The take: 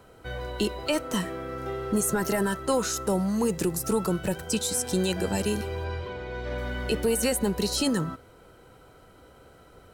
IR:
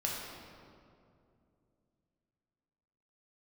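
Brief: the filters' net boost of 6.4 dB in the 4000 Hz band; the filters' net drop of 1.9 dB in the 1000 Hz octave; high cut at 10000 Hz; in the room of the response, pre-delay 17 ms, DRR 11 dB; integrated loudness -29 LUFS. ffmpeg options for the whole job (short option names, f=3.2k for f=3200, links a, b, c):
-filter_complex "[0:a]lowpass=10k,equalizer=f=1k:t=o:g=-3,equalizer=f=4k:t=o:g=8,asplit=2[a][b];[1:a]atrim=start_sample=2205,adelay=17[c];[b][c]afir=irnorm=-1:irlink=0,volume=-15.5dB[d];[a][d]amix=inputs=2:normalize=0,volume=-2dB"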